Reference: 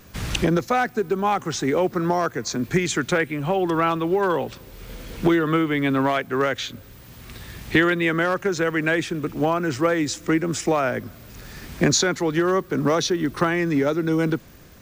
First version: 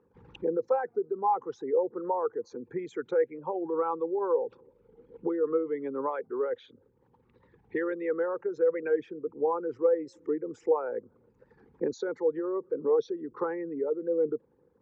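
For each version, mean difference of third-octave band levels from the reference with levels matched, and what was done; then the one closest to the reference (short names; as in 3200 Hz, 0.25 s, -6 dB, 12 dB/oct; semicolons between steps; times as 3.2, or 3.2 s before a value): 15.5 dB: formant sharpening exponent 2; double band-pass 650 Hz, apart 0.84 oct; record warp 45 rpm, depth 100 cents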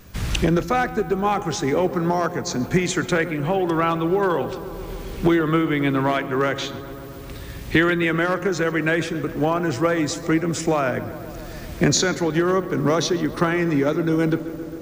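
3.0 dB: low shelf 110 Hz +6 dB; de-hum 267.1 Hz, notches 30; on a send: darkening echo 0.134 s, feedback 84%, low-pass 2500 Hz, level -15 dB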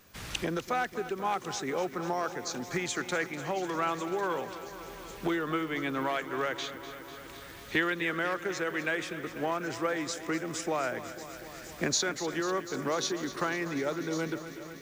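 6.0 dB: low shelf 310 Hz -9.5 dB; thin delay 1.098 s, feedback 58%, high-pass 3800 Hz, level -13 dB; lo-fi delay 0.247 s, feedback 80%, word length 8-bit, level -13 dB; gain -8 dB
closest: second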